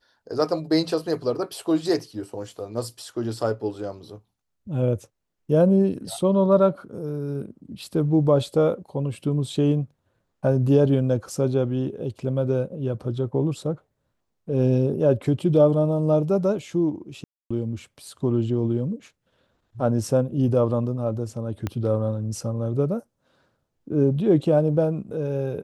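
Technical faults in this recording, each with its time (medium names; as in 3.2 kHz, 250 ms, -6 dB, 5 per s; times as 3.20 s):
17.24–17.50 s: dropout 265 ms
21.67 s: pop -14 dBFS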